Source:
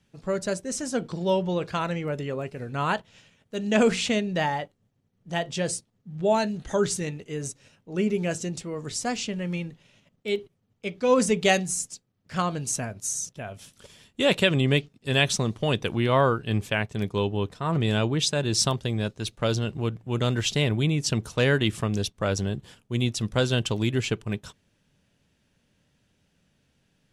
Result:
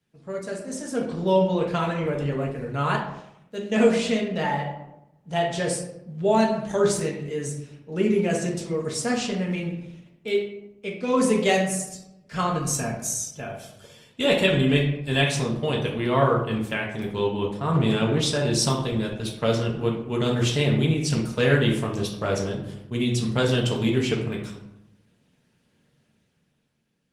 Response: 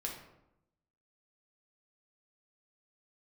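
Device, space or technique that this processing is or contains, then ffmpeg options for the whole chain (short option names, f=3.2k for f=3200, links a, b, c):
far-field microphone of a smart speaker: -filter_complex "[1:a]atrim=start_sample=2205[a];[0:a][a]afir=irnorm=-1:irlink=0,highpass=110,dynaudnorm=f=110:g=17:m=9dB,volume=-5dB" -ar 48000 -c:a libopus -b:a 24k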